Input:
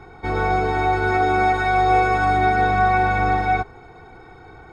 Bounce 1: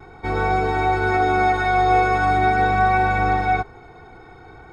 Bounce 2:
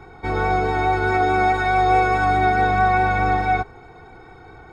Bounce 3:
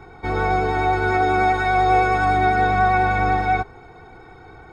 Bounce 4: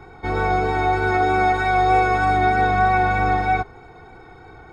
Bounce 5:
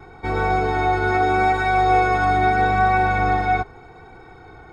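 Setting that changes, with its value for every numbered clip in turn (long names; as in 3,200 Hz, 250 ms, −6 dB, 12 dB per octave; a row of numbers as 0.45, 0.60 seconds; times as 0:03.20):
pitch vibrato, speed: 0.43, 4.7, 10, 3.2, 0.8 Hertz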